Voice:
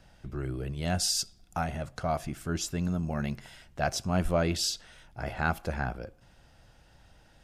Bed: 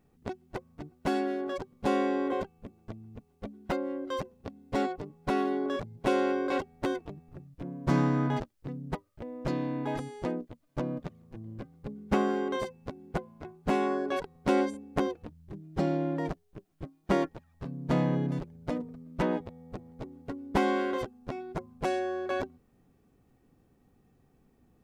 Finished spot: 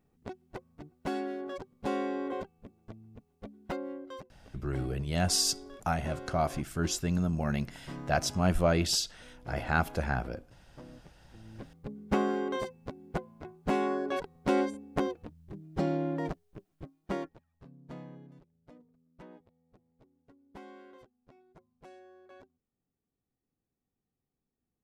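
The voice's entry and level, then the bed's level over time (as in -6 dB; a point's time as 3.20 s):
4.30 s, +1.0 dB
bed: 3.92 s -5 dB
4.40 s -17 dB
11.16 s -17 dB
11.68 s -1.5 dB
16.60 s -1.5 dB
18.32 s -23 dB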